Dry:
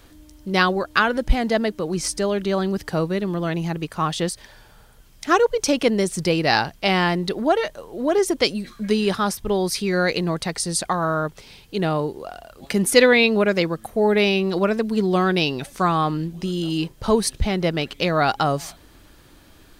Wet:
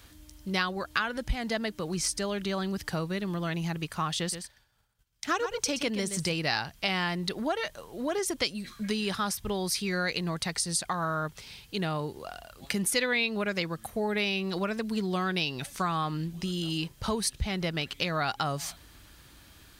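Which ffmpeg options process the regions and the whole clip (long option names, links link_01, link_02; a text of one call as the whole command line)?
ffmpeg -i in.wav -filter_complex "[0:a]asettb=1/sr,asplit=3[link_01][link_02][link_03];[link_01]atrim=end=4.194[link_04];[link_02]atrim=start=4.19:end=6.33,asetpts=PTS-STARTPTS,afade=type=in:duration=0.004:curve=qsin,afade=type=out:start_time=2.136:duration=0.004:curve=qsin,agate=range=-33dB:threshold=-38dB:ratio=3:release=100:detection=peak,equalizer=frequency=11000:width_type=o:width=0.26:gain=-3.5,aecho=1:1:124:0.282,atrim=end_sample=94374[link_05];[link_03]atrim=start=6.326[link_06];[link_04][link_05]acrossfade=duration=0.004:curve1=hsin:curve2=qsin[link_07];[link_07][link_06]acrossfade=duration=0.004:curve1=qsin:curve2=hsin,highpass=46,equalizer=frequency=410:width_type=o:width=2.6:gain=-9,acompressor=threshold=-28dB:ratio=2.5" out.wav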